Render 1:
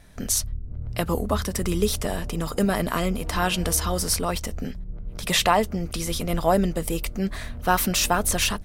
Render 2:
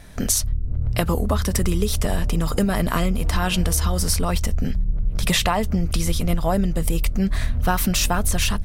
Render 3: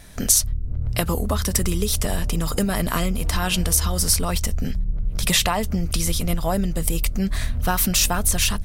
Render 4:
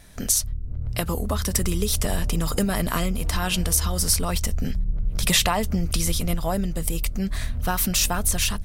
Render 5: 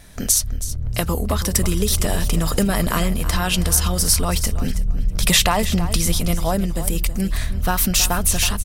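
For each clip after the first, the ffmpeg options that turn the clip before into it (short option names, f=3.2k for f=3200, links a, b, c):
-af "asubboost=boost=2.5:cutoff=200,acompressor=threshold=-24dB:ratio=6,volume=7.5dB"
-af "highshelf=f=3.5k:g=7.5,volume=-2dB"
-af "dynaudnorm=f=360:g=5:m=11.5dB,volume=-4.5dB"
-af "aecho=1:1:323|646:0.224|0.0381,volume=4dB"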